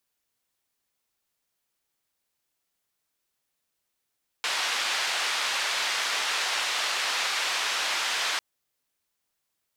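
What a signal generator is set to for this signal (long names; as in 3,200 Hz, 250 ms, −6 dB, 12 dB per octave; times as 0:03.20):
band-limited noise 810–4,100 Hz, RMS −28 dBFS 3.95 s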